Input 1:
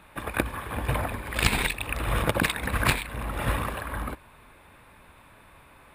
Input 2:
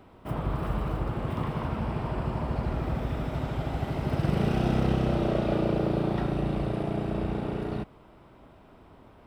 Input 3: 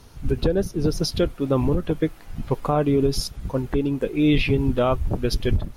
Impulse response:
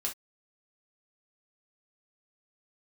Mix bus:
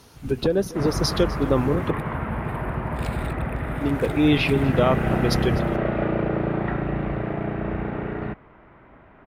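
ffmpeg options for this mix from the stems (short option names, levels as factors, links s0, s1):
-filter_complex "[0:a]adelay=1600,volume=0.158[s0];[1:a]lowpass=f=1900:t=q:w=2.8,adelay=500,volume=1.26[s1];[2:a]highpass=f=180:p=1,volume=1.19,asplit=3[s2][s3][s4];[s2]atrim=end=1.91,asetpts=PTS-STARTPTS,afade=t=out:st=1.906:d=0.004:c=hsin[s5];[s3]atrim=start=1.91:end=3.81,asetpts=PTS-STARTPTS,volume=0[s6];[s4]atrim=start=3.81,asetpts=PTS-STARTPTS,afade=t=in:d=0.004:c=hsin[s7];[s5][s6][s7]concat=n=3:v=0:a=1,asplit=2[s8][s9];[s9]volume=0.119,aecho=0:1:250:1[s10];[s0][s1][s8][s10]amix=inputs=4:normalize=0"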